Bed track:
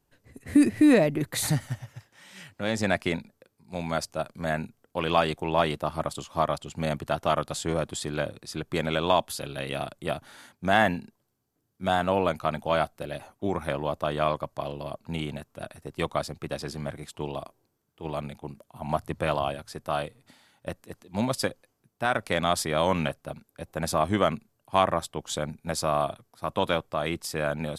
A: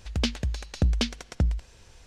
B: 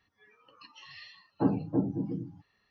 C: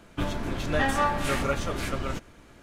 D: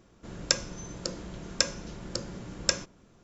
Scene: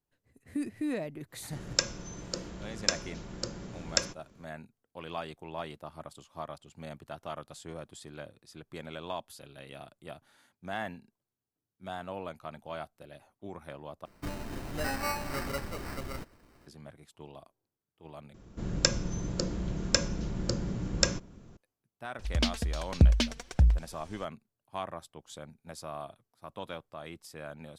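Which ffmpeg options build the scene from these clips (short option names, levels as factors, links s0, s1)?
-filter_complex "[4:a]asplit=2[s0][s1];[0:a]volume=0.178[s2];[3:a]acrusher=samples=13:mix=1:aa=0.000001[s3];[s1]lowshelf=f=320:g=10.5[s4];[1:a]aphaser=in_gain=1:out_gain=1:delay=4.5:decay=0.53:speed=1.3:type=sinusoidal[s5];[s2]asplit=3[s6][s7][s8];[s6]atrim=end=14.054[s9];[s3]atrim=end=2.62,asetpts=PTS-STARTPTS,volume=0.376[s10];[s7]atrim=start=16.666:end=18.344[s11];[s4]atrim=end=3.23,asetpts=PTS-STARTPTS,volume=0.944[s12];[s8]atrim=start=21.566[s13];[s0]atrim=end=3.23,asetpts=PTS-STARTPTS,volume=0.794,afade=t=in:d=0.1,afade=t=out:st=3.13:d=0.1,adelay=1280[s14];[s5]atrim=end=2.06,asetpts=PTS-STARTPTS,volume=0.708,afade=t=in:d=0.004:c=hsin,afade=t=out:st=2.056:d=0.004:c=hsin,adelay=22190[s15];[s9][s10]acrossfade=d=0.004:c1=hsin:c2=hsin[s16];[s16][s11]acrossfade=d=0.004:c1=hsin:c2=hsin[s17];[s17][s12]acrossfade=d=0.004:c1=hsin:c2=hsin[s18];[s18][s13]acrossfade=d=0.004:c1=hsin:c2=hsin[s19];[s19][s14][s15]amix=inputs=3:normalize=0"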